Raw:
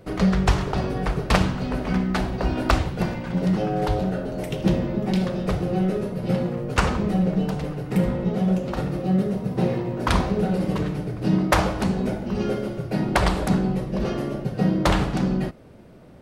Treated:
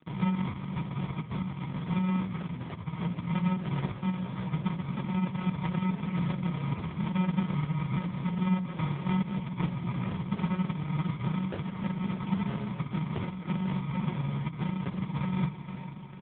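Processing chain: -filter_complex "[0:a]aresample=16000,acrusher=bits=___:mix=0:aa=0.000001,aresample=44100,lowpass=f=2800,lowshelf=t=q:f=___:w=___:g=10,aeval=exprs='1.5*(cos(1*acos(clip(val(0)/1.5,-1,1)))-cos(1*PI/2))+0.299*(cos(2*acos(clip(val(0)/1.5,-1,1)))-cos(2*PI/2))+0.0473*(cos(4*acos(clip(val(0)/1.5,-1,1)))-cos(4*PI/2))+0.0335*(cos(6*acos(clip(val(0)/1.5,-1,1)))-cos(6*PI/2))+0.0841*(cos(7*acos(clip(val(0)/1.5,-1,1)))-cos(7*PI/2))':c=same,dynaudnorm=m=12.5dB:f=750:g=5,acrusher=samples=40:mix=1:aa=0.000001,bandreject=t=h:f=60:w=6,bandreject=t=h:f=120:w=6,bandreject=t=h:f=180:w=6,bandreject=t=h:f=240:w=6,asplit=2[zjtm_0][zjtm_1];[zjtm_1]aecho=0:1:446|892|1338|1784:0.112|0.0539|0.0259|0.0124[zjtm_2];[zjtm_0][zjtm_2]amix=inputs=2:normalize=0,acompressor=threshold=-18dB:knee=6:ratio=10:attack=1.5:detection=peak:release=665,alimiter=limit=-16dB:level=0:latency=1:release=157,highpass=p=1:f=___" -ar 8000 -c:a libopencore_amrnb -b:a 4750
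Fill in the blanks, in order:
6, 220, 3, 100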